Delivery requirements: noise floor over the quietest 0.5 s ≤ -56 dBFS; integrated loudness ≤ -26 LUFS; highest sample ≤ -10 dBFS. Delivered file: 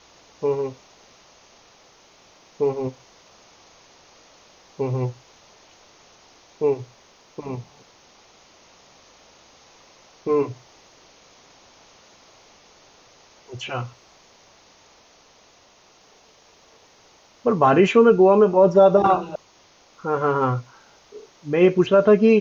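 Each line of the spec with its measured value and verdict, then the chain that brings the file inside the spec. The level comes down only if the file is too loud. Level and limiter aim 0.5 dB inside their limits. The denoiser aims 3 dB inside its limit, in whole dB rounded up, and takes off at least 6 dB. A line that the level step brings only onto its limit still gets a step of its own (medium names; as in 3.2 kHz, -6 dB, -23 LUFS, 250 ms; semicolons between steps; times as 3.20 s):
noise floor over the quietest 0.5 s -55 dBFS: fail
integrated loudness -19.5 LUFS: fail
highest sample -5.5 dBFS: fail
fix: trim -7 dB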